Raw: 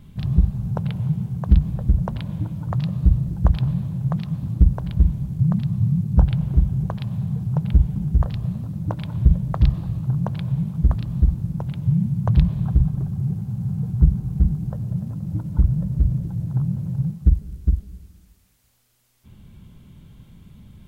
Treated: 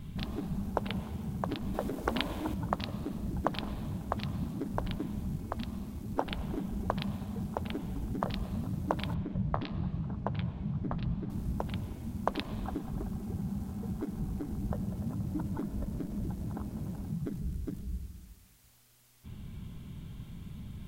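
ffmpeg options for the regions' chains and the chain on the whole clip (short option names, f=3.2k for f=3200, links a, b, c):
-filter_complex "[0:a]asettb=1/sr,asplit=3[a][b][c];[a]atrim=end=1.744[d];[b]atrim=start=1.74:end=2.54,asetpts=PTS-STARTPTS,afade=t=in:d=0.004:c=qsin,afade=t=out:st=0.796:d=0.004:c=qsin,highpass=f=49:w=0.5412,highpass=f=49:w=1.3066,acontrast=64[e];[c]atrim=start=2.536[f];[d][e]acrossfade=d=0.004:c1=hsin:c2=qsin[g];[g][f]acrossfade=d=0.004:c1=qsin:c2=hsin,asettb=1/sr,asplit=3[h][i][j];[h]atrim=end=9.144[k];[i]atrim=start=9.14:end=11.3,asetpts=PTS-STARTPTS,afade=t=in:d=0.004:c=qsin,afade=t=out:st=2.156:d=0.004:c=qsin,lowpass=3.5k,flanger=delay=4.4:depth=9.9:regen=-54:speed=1:shape=sinusoidal[l];[j]atrim=start=11.296[m];[k][l]acrossfade=d=0.004:c1=hsin:c2=qsin[n];[n][m]acrossfade=d=0.004:c1=qsin:c2=hsin,bandreject=f=520:w=12,afftfilt=real='re*lt(hypot(re,im),0.316)':imag='im*lt(hypot(re,im),0.316)':win_size=1024:overlap=0.75,volume=1.5dB"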